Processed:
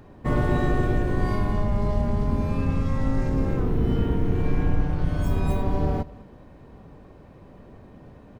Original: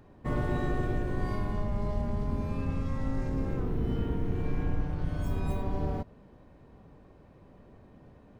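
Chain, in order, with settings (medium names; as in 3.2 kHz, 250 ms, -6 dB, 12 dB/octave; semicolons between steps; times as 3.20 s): delay 204 ms -21 dB; trim +7.5 dB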